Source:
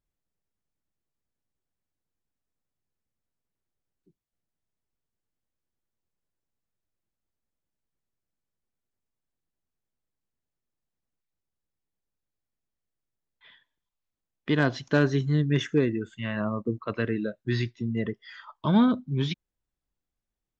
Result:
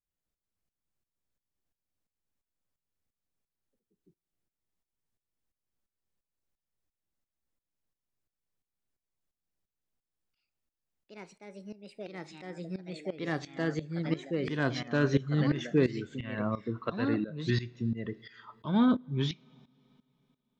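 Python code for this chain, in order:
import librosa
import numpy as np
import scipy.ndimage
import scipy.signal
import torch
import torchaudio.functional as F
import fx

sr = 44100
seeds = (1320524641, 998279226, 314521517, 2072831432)

y = fx.echo_pitch(x, sr, ms=285, semitones=2, count=3, db_per_echo=-6.0)
y = fx.rev_double_slope(y, sr, seeds[0], early_s=0.3, late_s=3.2, knee_db=-21, drr_db=15.0)
y = fx.tremolo_shape(y, sr, shape='saw_up', hz=2.9, depth_pct=85)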